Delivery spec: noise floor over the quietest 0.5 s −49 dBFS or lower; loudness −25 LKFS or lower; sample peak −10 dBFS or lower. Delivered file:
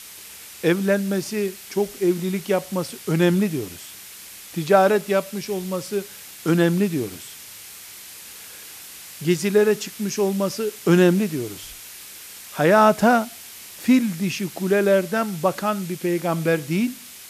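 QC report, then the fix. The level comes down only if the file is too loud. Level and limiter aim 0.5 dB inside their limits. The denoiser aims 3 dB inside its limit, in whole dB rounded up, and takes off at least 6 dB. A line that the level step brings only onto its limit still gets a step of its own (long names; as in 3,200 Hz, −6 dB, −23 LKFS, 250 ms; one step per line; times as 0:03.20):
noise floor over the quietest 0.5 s −41 dBFS: out of spec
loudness −21.5 LKFS: out of spec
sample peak −4.5 dBFS: out of spec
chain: broadband denoise 7 dB, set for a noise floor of −41 dBFS
level −4 dB
brickwall limiter −10.5 dBFS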